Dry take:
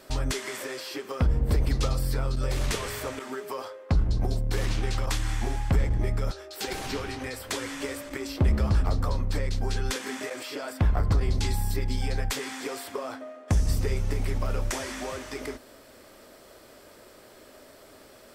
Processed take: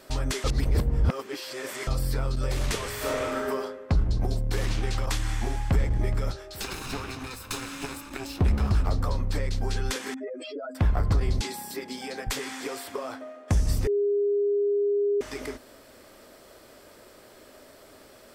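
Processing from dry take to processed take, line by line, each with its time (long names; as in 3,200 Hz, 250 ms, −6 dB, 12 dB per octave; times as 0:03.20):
0:00.44–0:01.87: reverse
0:02.96–0:03.48: thrown reverb, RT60 1.1 s, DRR −5 dB
0:05.53–0:05.94: delay throw 420 ms, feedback 35%, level −14 dB
0:06.62–0:08.86: lower of the sound and its delayed copy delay 0.78 ms
0:10.14–0:10.75: expanding power law on the bin magnitudes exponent 2.9
0:11.41–0:12.27: high-pass filter 230 Hz 24 dB per octave
0:13.87–0:15.21: beep over 407 Hz −21 dBFS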